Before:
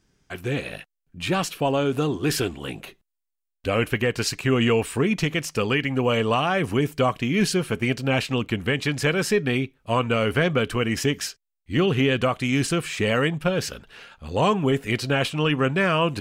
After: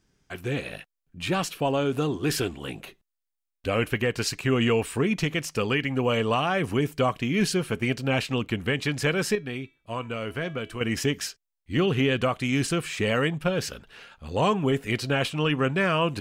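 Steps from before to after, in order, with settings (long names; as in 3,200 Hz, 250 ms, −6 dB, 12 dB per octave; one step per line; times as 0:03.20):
0:09.35–0:10.81: tuned comb filter 330 Hz, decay 0.46 s, harmonics all, mix 60%
level −2.5 dB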